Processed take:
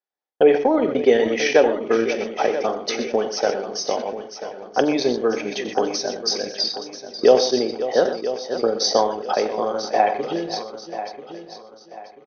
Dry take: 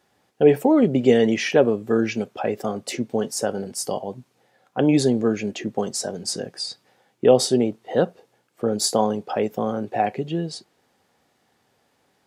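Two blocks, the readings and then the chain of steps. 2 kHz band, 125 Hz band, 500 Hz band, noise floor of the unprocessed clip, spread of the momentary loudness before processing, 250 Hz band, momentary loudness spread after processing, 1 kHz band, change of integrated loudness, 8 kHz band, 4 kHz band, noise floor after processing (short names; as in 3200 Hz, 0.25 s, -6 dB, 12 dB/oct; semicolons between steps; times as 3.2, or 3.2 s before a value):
+4.5 dB, -12.0 dB, +2.5 dB, -67 dBFS, 11 LU, -3.5 dB, 15 LU, +4.5 dB, +1.0 dB, -1.0 dB, +5.0 dB, -47 dBFS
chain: HPF 420 Hz 12 dB/oct; tapped delay 44/88/123/538 ms -13.5/-12.5/-11/-14 dB; in parallel at -0.5 dB: compressor, threshold -28 dBFS, peak gain reduction 15.5 dB; on the sum: transient shaper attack +5 dB, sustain -7 dB; expander -37 dBFS; brick-wall FIR low-pass 6400 Hz; notch 2800 Hz, Q 11; on a send: feedback echo 0.988 s, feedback 35%, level -12 dB; on the sum: sustainer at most 90 dB/s; gain -1 dB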